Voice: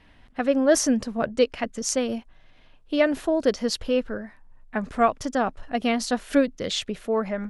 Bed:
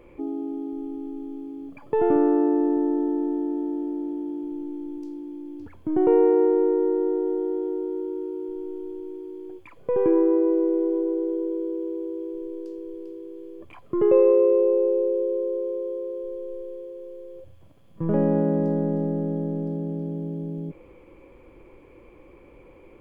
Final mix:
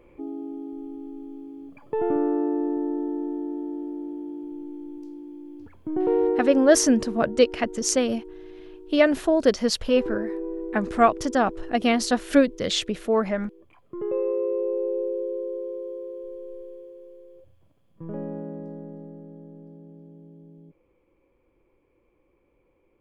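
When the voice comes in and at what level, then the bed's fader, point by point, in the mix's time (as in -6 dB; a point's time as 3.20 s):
6.00 s, +2.5 dB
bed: 6.29 s -4 dB
6.64 s -11 dB
13.93 s -11 dB
14.99 s -4.5 dB
16.60 s -4.5 dB
19.29 s -17 dB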